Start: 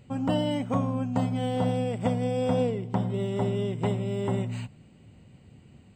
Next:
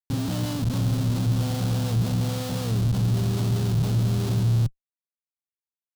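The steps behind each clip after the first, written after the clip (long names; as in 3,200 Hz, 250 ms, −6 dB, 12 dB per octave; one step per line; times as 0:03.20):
comparator with hysteresis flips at −36 dBFS
graphic EQ with 10 bands 125 Hz +11 dB, 500 Hz −5 dB, 1,000 Hz −4 dB, 2,000 Hz −9 dB, 4,000 Hz +4 dB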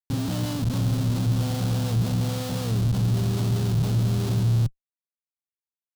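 no processing that can be heard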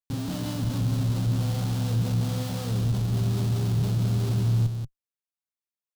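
single-tap delay 183 ms −6 dB
level −4 dB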